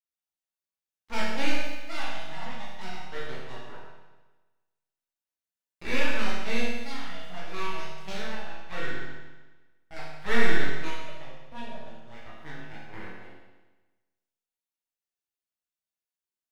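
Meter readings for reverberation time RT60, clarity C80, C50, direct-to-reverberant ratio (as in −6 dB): 1.2 s, 2.0 dB, −0.5 dB, −7.5 dB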